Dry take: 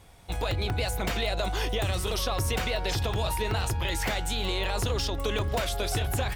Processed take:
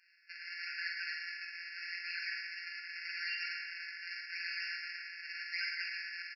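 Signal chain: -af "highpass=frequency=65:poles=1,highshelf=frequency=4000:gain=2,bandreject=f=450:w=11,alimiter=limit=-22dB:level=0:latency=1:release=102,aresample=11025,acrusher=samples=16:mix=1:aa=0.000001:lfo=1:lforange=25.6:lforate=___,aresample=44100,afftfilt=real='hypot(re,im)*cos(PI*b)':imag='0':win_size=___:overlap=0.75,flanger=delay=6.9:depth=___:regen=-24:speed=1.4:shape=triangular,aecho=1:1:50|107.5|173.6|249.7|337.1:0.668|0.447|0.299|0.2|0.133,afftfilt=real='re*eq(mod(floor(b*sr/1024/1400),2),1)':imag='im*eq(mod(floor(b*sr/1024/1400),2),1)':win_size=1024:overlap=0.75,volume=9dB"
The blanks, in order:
0.83, 1024, 8.7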